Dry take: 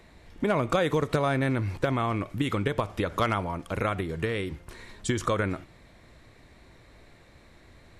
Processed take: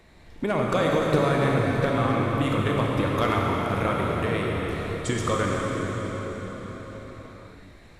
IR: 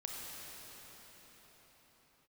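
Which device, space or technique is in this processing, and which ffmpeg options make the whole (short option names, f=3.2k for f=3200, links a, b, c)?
cathedral: -filter_complex "[1:a]atrim=start_sample=2205[a];[0:a][a]afir=irnorm=-1:irlink=0,volume=3.5dB"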